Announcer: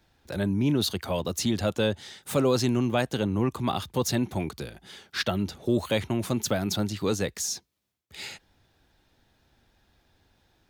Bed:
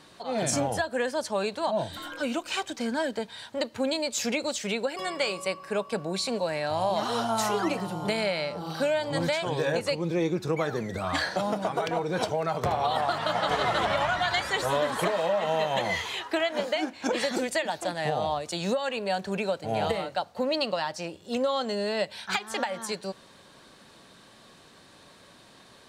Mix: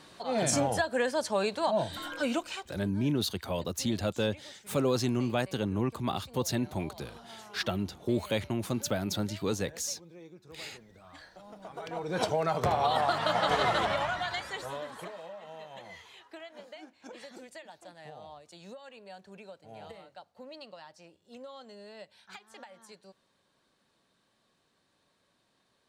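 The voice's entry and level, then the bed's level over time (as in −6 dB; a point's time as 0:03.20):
2.40 s, −4.5 dB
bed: 0:02.40 −0.5 dB
0:02.83 −23.5 dB
0:11.42 −23.5 dB
0:12.25 −0.5 dB
0:13.65 −0.5 dB
0:15.39 −19.5 dB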